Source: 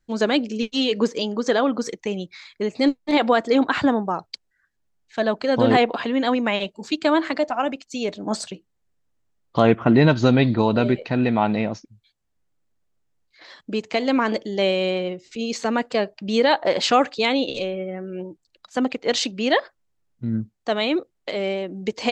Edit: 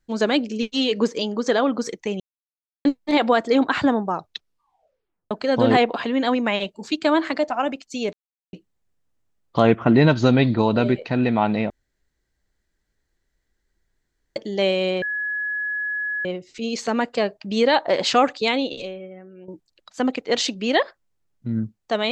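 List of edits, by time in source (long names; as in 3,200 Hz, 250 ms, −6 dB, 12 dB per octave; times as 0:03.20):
0:02.20–0:02.85: silence
0:04.16: tape stop 1.15 s
0:08.13–0:08.53: silence
0:11.70–0:14.36: fill with room tone
0:15.02: insert tone 1,690 Hz −23 dBFS 1.23 s
0:17.23–0:18.25: fade out quadratic, to −12.5 dB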